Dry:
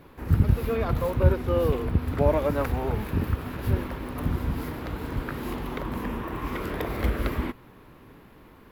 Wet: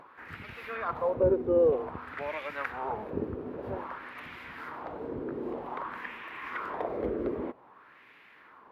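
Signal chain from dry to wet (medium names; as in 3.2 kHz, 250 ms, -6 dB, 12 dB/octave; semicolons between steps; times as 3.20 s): LFO band-pass sine 0.52 Hz 390–2300 Hz; upward compressor, threshold -54 dBFS; trim +4.5 dB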